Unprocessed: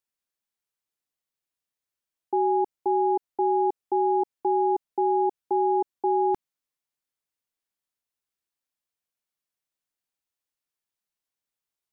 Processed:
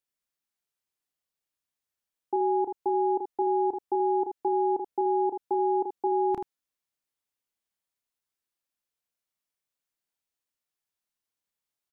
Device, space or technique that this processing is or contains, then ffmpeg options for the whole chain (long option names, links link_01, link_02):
slapback doubling: -filter_complex "[0:a]asplit=3[link_01][link_02][link_03];[link_02]adelay=31,volume=-5.5dB[link_04];[link_03]adelay=80,volume=-7.5dB[link_05];[link_01][link_04][link_05]amix=inputs=3:normalize=0,volume=-2dB"